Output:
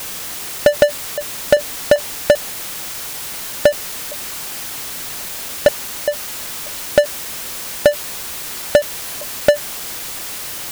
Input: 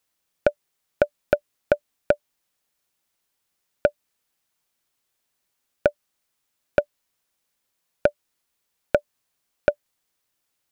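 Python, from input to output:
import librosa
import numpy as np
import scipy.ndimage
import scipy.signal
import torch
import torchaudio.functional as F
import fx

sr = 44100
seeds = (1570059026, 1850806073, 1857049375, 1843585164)

y = fx.block_reorder(x, sr, ms=196.0, group=2)
y = fx.power_curve(y, sr, exponent=0.35)
y = F.gain(torch.from_numpy(y), 2.0).numpy()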